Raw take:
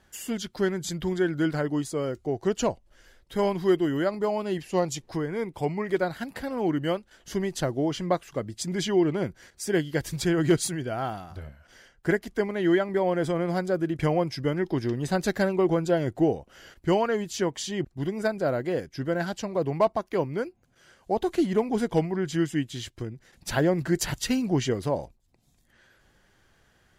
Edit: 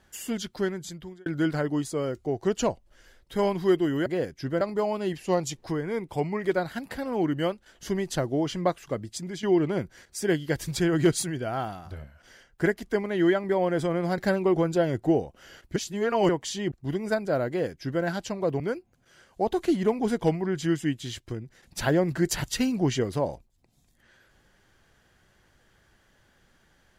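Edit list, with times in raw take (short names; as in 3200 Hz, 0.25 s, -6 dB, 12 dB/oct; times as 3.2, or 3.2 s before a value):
0.46–1.26 fade out
8.44–8.88 fade out, to -11.5 dB
13.63–15.31 cut
16.89–17.42 reverse
18.61–19.16 copy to 4.06
19.73–20.3 cut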